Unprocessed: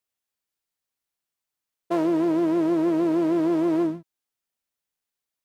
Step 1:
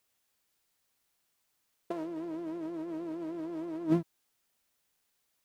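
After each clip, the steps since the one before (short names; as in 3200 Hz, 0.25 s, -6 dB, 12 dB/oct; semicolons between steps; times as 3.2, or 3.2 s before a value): negative-ratio compressor -30 dBFS, ratio -0.5; gain -2 dB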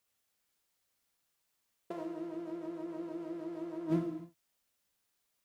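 non-linear reverb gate 0.33 s falling, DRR 2.5 dB; gain -5 dB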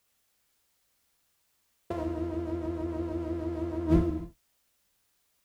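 octaver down 2 oct, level -1 dB; gain +7 dB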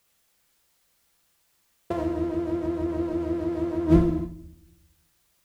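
shoebox room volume 2000 m³, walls furnished, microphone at 0.79 m; gain +4.5 dB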